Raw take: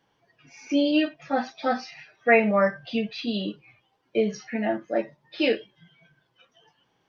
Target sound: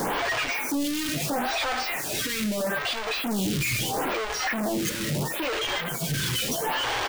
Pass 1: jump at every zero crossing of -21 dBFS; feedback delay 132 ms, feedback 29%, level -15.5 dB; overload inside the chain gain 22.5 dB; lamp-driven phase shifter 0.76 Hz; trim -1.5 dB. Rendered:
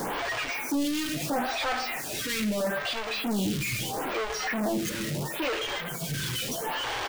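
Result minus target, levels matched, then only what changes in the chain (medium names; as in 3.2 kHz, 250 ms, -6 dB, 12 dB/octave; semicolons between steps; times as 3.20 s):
jump at every zero crossing: distortion -6 dB
change: jump at every zero crossing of -10 dBFS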